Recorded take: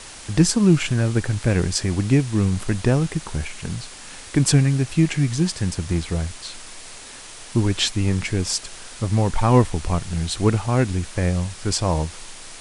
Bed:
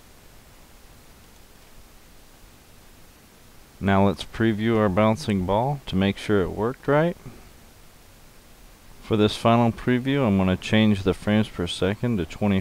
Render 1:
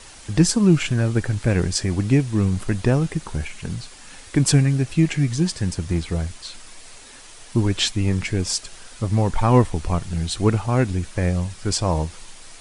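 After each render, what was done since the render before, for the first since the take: noise reduction 6 dB, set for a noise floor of -40 dBFS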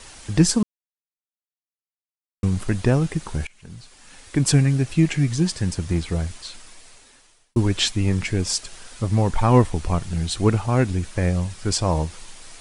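0.63–2.43 s: mute; 3.47–4.66 s: fade in, from -21 dB; 6.36–7.56 s: fade out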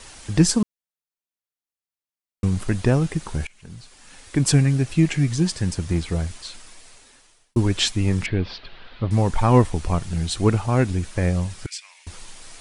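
8.26–9.11 s: steep low-pass 4.1 kHz 48 dB/octave; 11.66–12.07 s: ladder high-pass 2 kHz, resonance 65%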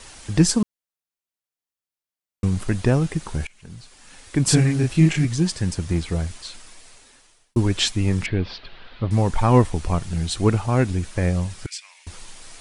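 4.44–5.25 s: doubling 32 ms -2 dB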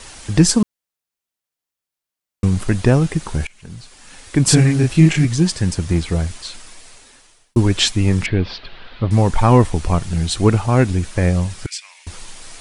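trim +5 dB; peak limiter -1 dBFS, peak gain reduction 3 dB

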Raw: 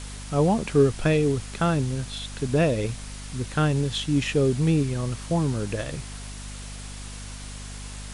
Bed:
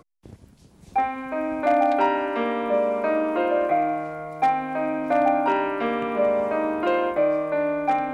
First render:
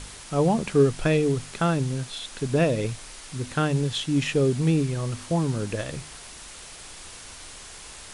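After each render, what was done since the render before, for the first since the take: de-hum 50 Hz, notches 5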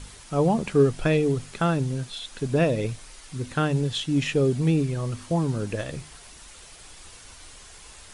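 noise reduction 6 dB, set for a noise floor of -43 dBFS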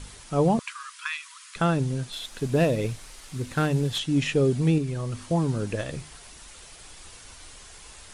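0.59–1.56 s: brick-wall FIR high-pass 950 Hz; 2.12–3.99 s: CVSD coder 64 kbps; 4.78–5.19 s: compression 2:1, threshold -27 dBFS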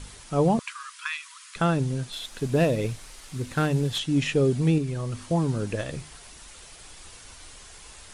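no audible change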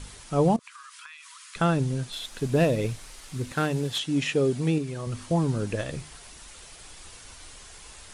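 0.56–1.48 s: compression, threshold -42 dBFS; 3.52–5.07 s: high-pass 200 Hz 6 dB/octave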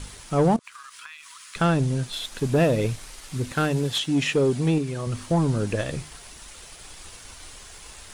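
waveshaping leveller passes 1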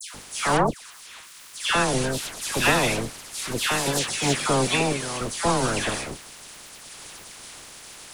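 spectral peaks clipped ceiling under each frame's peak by 24 dB; phase dispersion lows, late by 146 ms, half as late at 1.8 kHz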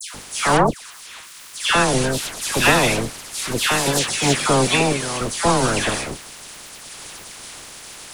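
trim +5 dB

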